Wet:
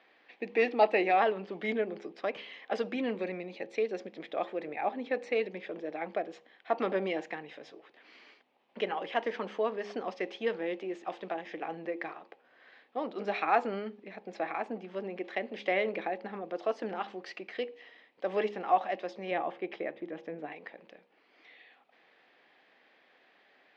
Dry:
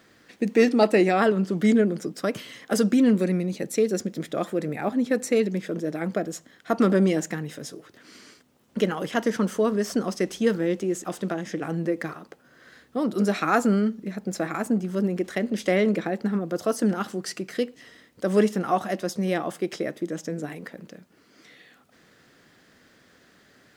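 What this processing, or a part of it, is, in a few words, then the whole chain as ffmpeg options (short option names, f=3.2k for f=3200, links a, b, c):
phone earpiece: -filter_complex "[0:a]bandreject=f=68.64:t=h:w=4,bandreject=f=137.28:t=h:w=4,bandreject=f=205.92:t=h:w=4,bandreject=f=274.56:t=h:w=4,bandreject=f=343.2:t=h:w=4,bandreject=f=411.84:t=h:w=4,bandreject=f=480.48:t=h:w=4,bandreject=f=549.12:t=h:w=4,asettb=1/sr,asplit=3[a][b][c];[a]atrim=end=19.314[d];[b]atrim=start=19.31:end=20.52,asetpts=PTS-STARTPTS,afade=t=in:d=0.004:c=qsin,afade=t=out:st=1.206:d=0.004:c=qsin,bass=f=250:g=6,treble=f=4k:g=-12[e];[c]atrim=start=20.516[f];[d][e]acrossfade=d=0.004:c1=hsin:c2=qsin[g];[g][f]acrossfade=d=0.004:c1=qsin:c2=hsin,highpass=480,equalizer=f=800:t=q:w=4:g=7,equalizer=f=1.4k:t=q:w=4:g=-7,equalizer=f=2.4k:t=q:w=4:g=5,lowpass=f=3.6k:w=0.5412,lowpass=f=3.6k:w=1.3066,volume=-4.5dB"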